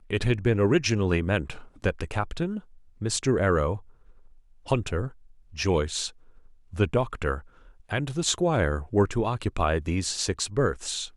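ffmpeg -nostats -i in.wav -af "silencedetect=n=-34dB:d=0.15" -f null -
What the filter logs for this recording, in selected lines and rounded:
silence_start: 1.59
silence_end: 1.84 | silence_duration: 0.25
silence_start: 2.59
silence_end: 3.01 | silence_duration: 0.42
silence_start: 3.77
silence_end: 4.68 | silence_duration: 0.91
silence_start: 5.08
silence_end: 5.58 | silence_duration: 0.50
silence_start: 6.08
silence_end: 6.73 | silence_duration: 0.65
silence_start: 7.39
silence_end: 7.91 | silence_duration: 0.52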